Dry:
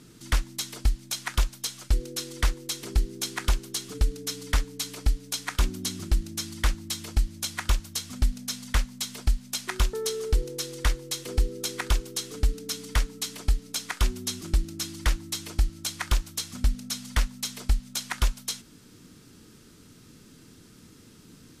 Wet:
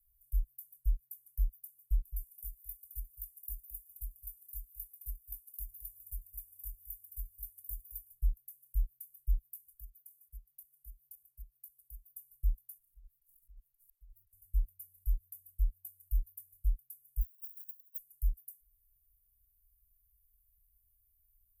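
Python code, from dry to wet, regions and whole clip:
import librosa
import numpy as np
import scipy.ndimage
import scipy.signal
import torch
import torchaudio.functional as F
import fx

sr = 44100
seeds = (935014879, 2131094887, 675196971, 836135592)

y = fx.spec_clip(x, sr, under_db=17, at=(2.05, 8.12), fade=0.02)
y = fx.notch_comb(y, sr, f0_hz=1300.0, at=(2.05, 8.12), fade=0.02)
y = fx.echo_single(y, sr, ms=216, db=-9.5, at=(2.05, 8.12), fade=0.02)
y = fx.chain(y, sr, fx.highpass(hz=110.0, slope=12),
    fx.level_steps(step_db=11), at=(9.73, 12.16))
y = fx.chain(y, sr, fx.auto_swell(attack_ms=513.0),
    fx.over_compress(threshold_db=-45.0, ratio=-0.5),
    fx.doppler_dist(depth_ms=0.25), at=(12.78, 14.33))
y = fx.chain(y, sr, fx.sine_speech(),
    fx.highpass(hz=950.0, slope=24),
    fx.resample_bad(factor=8, down='filtered', up='hold'), at=(17.21, 17.98))
y = scipy.signal.sosfilt(scipy.signal.cheby2(4, 70, [220.0, 5000.0], 'bandstop', fs=sr, output='sos'), y)
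y = fx.tone_stack(y, sr, knobs='5-5-5')
y = y * librosa.db_to_amplitude(8.5)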